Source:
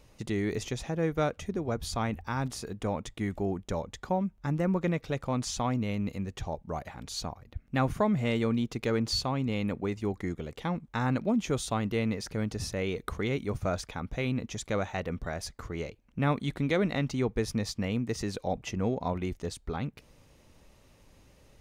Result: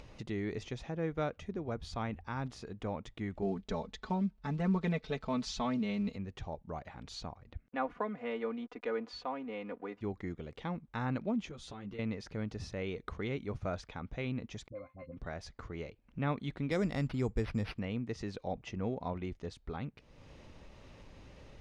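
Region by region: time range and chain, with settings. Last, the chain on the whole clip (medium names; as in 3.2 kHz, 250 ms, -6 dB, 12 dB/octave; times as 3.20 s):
3.42–6.16 s: block-companded coder 7-bit + peaking EQ 4.2 kHz +6 dB 0.72 oct + comb 4.6 ms, depth 93%
7.68–10.01 s: hysteresis with a dead band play -48 dBFS + three-band isolator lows -20 dB, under 310 Hz, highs -13 dB, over 2.5 kHz + comb 4.1 ms, depth 75%
11.49–11.99 s: compression 10:1, threshold -31 dBFS + three-phase chorus
14.68–15.17 s: expander -33 dBFS + pitch-class resonator C, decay 0.12 s + phase dispersion highs, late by 51 ms, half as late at 760 Hz
16.71–17.79 s: bass shelf 110 Hz +10 dB + careless resampling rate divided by 6×, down none, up hold
whole clip: low-pass 4.3 kHz 12 dB/octave; upward compressor, threshold -35 dBFS; trim -6.5 dB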